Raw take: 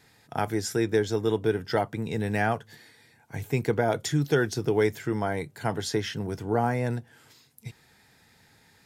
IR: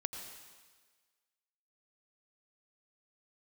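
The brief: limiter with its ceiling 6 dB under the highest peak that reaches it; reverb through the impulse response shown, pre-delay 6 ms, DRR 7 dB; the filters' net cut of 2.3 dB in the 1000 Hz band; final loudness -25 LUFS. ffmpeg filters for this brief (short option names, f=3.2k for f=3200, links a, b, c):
-filter_complex "[0:a]equalizer=f=1k:t=o:g=-3.5,alimiter=limit=-16.5dB:level=0:latency=1,asplit=2[a][b];[1:a]atrim=start_sample=2205,adelay=6[c];[b][c]afir=irnorm=-1:irlink=0,volume=-7dB[d];[a][d]amix=inputs=2:normalize=0,volume=4dB"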